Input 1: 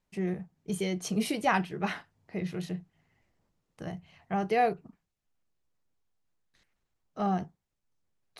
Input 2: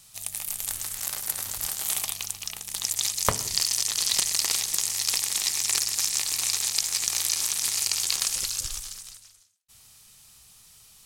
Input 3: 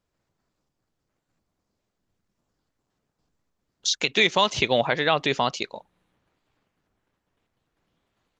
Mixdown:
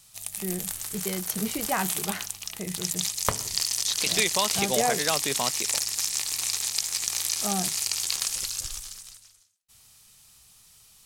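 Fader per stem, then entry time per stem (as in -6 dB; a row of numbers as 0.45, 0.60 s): -1.5, -2.0, -6.5 dB; 0.25, 0.00, 0.00 s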